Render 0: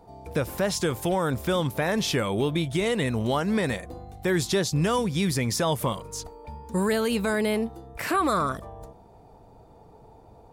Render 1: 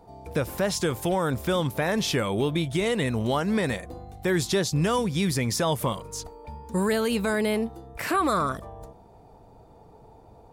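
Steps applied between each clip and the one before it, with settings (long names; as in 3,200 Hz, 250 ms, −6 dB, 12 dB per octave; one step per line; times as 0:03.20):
no processing that can be heard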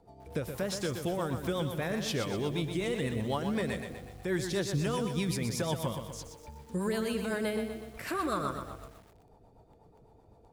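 rotating-speaker cabinet horn 8 Hz
feedback echo at a low word length 123 ms, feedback 55%, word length 8 bits, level −7 dB
level −6 dB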